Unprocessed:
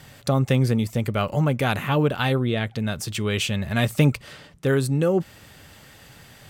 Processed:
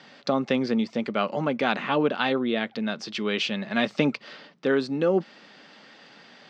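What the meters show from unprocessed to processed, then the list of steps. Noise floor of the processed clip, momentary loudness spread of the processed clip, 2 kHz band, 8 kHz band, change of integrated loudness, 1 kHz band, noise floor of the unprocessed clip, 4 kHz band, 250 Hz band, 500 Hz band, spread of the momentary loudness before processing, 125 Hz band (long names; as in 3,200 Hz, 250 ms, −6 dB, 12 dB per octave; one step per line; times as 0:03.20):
−52 dBFS, 6 LU, −0.5 dB, −13.0 dB, −3.0 dB, 0.0 dB, −49 dBFS, −1.0 dB, −1.5 dB, −1.0 dB, 7 LU, −15.5 dB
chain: elliptic band-pass filter 210–5,000 Hz, stop band 40 dB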